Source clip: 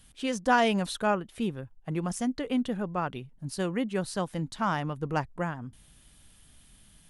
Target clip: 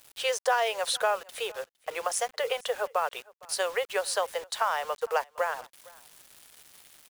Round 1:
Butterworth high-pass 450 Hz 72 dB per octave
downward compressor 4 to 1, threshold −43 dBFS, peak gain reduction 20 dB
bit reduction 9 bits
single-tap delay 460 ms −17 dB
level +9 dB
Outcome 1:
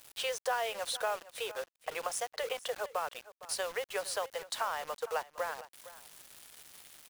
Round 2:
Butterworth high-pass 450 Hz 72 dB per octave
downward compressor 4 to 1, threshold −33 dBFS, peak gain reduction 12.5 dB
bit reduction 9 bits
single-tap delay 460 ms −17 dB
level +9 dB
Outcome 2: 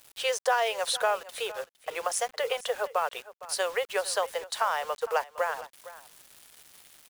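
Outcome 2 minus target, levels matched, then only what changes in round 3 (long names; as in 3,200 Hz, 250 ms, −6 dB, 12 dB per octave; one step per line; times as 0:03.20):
echo-to-direct +7 dB
change: single-tap delay 460 ms −24 dB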